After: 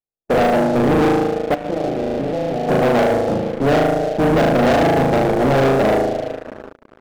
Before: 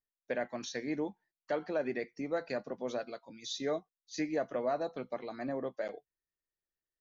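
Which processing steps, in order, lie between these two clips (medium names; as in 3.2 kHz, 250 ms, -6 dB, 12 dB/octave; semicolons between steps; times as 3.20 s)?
spectral contrast reduction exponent 0.41; in parallel at +0.5 dB: gain riding 0.5 s; on the sum: Chebyshev low-pass 830 Hz, order 8; on a send: flutter echo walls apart 6.4 m, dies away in 1.2 s; 1.54–2.69 s: on the sum: level held to a coarse grid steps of 22 dB; band-passed feedback delay 334 ms, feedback 66%, band-pass 320 Hz, level -19 dB; transient shaper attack -3 dB, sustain -7 dB; waveshaping leveller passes 5; trim +5.5 dB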